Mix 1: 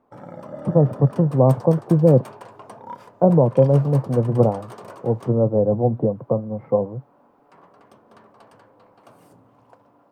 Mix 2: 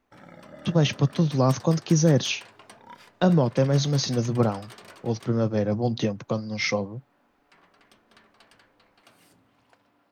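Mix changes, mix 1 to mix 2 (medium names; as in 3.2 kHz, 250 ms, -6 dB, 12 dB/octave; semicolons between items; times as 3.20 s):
speech: remove four-pole ladder low-pass 1 kHz, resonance 25%; master: add graphic EQ 125/250/500/1000/2000/4000 Hz -11/-4/-10/-10/+5/+6 dB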